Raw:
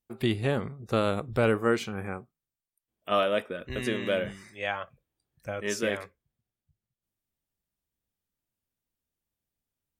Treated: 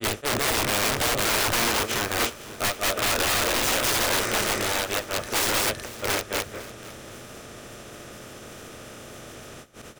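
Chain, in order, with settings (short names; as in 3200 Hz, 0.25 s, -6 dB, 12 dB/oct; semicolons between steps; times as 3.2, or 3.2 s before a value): per-bin compression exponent 0.4; high shelf 6500 Hz +7.5 dB; in parallel at +2 dB: limiter -16 dBFS, peak gain reduction 9.5 dB; on the sum: grains 0.179 s, grains 14/s, spray 0.502 s, pitch spread up and down by 0 st; wrapped overs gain 18 dB; dynamic EQ 160 Hz, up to -7 dB, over -48 dBFS, Q 1.9; on a send: feedback echo 0.503 s, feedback 32%, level -18 dB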